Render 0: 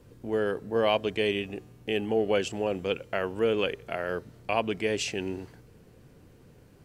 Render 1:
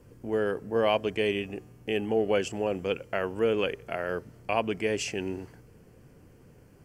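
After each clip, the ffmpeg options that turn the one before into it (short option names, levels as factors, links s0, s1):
-af "equalizer=f=3800:t=o:w=0.27:g=-12.5"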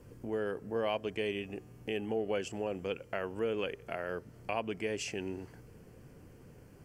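-af "acompressor=threshold=0.00631:ratio=1.5"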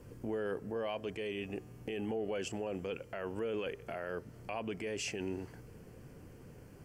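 -af "alimiter=level_in=2:limit=0.0631:level=0:latency=1:release=13,volume=0.501,volume=1.19"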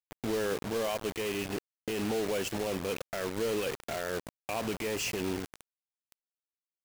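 -af "acrusher=bits=6:mix=0:aa=0.000001,volume=1.78"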